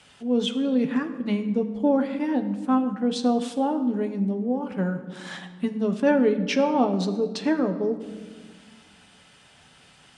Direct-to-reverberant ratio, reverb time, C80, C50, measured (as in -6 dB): 6.0 dB, 1.5 s, 12.5 dB, 11.0 dB